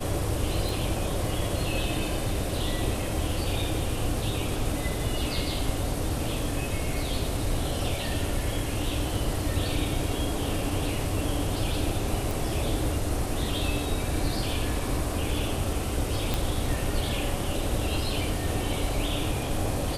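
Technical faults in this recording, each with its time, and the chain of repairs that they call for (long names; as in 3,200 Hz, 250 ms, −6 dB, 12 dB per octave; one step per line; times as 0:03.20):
0:00.69: click
0:12.31: click
0:16.34: click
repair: click removal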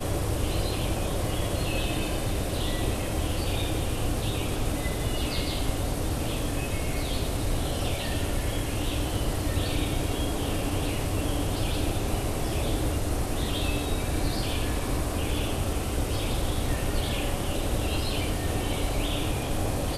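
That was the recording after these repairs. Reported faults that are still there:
none of them is left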